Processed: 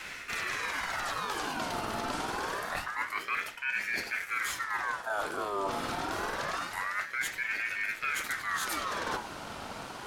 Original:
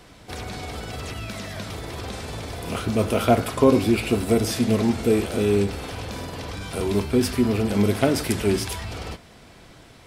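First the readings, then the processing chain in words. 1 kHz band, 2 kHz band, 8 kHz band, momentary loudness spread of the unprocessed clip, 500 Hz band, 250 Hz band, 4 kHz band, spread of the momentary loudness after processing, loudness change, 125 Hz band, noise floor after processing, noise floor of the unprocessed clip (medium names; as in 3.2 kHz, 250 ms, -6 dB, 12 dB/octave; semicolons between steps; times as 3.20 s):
-2.0 dB, +3.5 dB, -6.5 dB, 13 LU, -17.0 dB, -22.0 dB, -6.0 dB, 3 LU, -9.5 dB, -23.5 dB, -43 dBFS, -49 dBFS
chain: wow and flutter 18 cents; peaking EQ 560 Hz +8.5 dB 0.34 oct; hum notches 60/120/180/240/300/360/420 Hz; reverse; compression 16:1, threshold -36 dBFS, peak gain reduction 28.5 dB; reverse; ring modulator with a swept carrier 1.4 kHz, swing 45%, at 0.26 Hz; trim +8.5 dB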